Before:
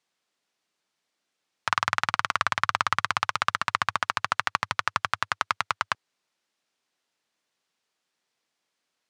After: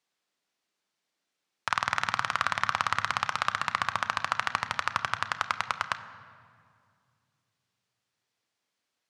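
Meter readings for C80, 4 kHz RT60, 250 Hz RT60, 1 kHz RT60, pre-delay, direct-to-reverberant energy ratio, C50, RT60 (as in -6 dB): 13.5 dB, 1.4 s, 3.1 s, 2.1 s, 3 ms, 10.0 dB, 12.5 dB, 2.2 s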